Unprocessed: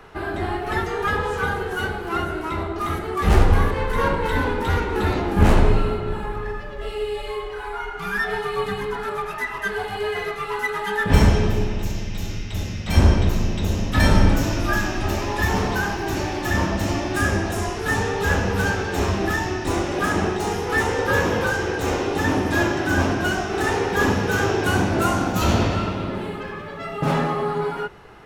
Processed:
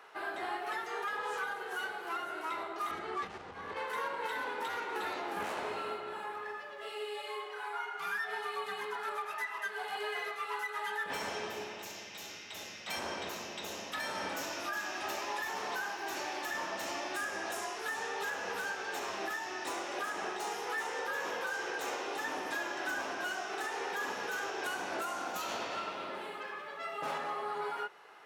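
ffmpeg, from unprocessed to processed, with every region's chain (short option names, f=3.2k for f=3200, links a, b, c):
-filter_complex "[0:a]asettb=1/sr,asplit=3[a][b][c];[a]atrim=end=2.914[d];[b]atrim=start=2.91:end=3.77,asetpts=PTS-STARTPTS,afade=t=in:d=0.004:c=qsin,afade=t=out:st=0.856:d=0.004:c=qsin,bass=f=250:g=13,treble=f=4k:g=2,acompressor=threshold=-12dB:ratio=16:attack=3.2:release=140:knee=1:detection=peak,lowpass=5.5k[e];[c]atrim=start=3.766[f];[d][e]acrossfade=d=0.004:c1=hsin:c2=qsin[g];[g][f]acrossfade=d=0.004:c1=qsin:c2=hsin,highpass=620,alimiter=limit=-20.5dB:level=0:latency=1:release=239,volume=-7dB"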